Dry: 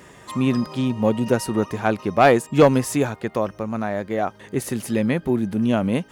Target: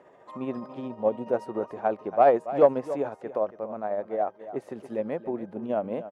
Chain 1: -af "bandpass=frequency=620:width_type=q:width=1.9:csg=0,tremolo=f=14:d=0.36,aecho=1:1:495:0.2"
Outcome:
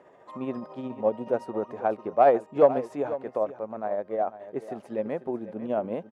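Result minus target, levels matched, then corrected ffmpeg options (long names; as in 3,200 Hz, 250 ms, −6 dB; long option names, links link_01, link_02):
echo 214 ms late
-af "bandpass=frequency=620:width_type=q:width=1.9:csg=0,tremolo=f=14:d=0.36,aecho=1:1:281:0.2"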